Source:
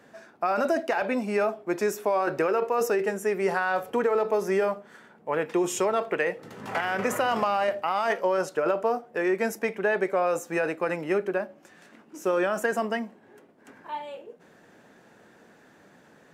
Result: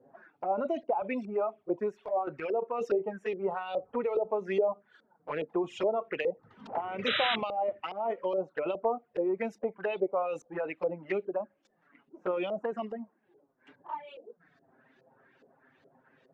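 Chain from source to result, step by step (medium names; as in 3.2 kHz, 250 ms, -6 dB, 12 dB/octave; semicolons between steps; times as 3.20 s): reverb removal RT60 1.2 s; LFO low-pass saw up 2.4 Hz 470–4200 Hz; 1.83–2.68 s: transient shaper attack -8 dB, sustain -2 dB; touch-sensitive flanger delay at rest 8.3 ms, full sweep at -21.5 dBFS; 7.06–7.36 s: painted sound noise 1.2–4 kHz -25 dBFS; trim -5 dB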